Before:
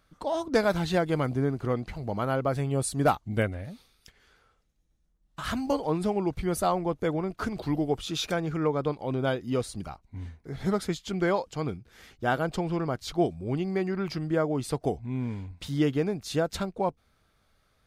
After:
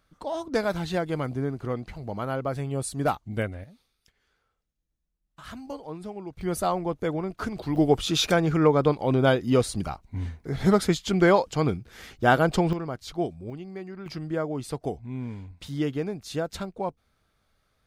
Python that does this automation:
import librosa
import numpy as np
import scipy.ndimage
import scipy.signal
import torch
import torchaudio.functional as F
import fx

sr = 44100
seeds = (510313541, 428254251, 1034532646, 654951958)

y = fx.gain(x, sr, db=fx.steps((0.0, -2.0), (3.64, -10.0), (6.41, 0.0), (7.76, 7.0), (12.73, -3.0), (13.5, -9.5), (14.06, -2.5)))